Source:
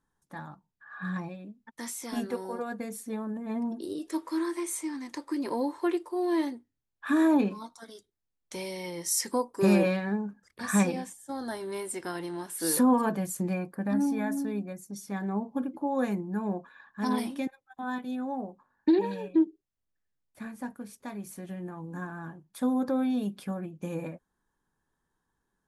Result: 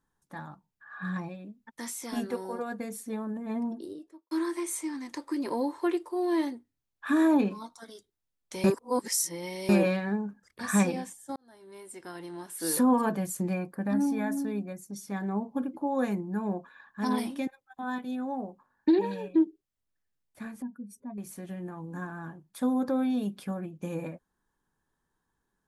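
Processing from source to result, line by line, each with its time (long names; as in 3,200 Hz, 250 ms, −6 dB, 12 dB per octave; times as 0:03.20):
0:03.56–0:04.31: fade out and dull
0:08.64–0:09.69: reverse
0:11.36–0:13.01: fade in
0:20.62–0:21.18: expanding power law on the bin magnitudes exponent 2.2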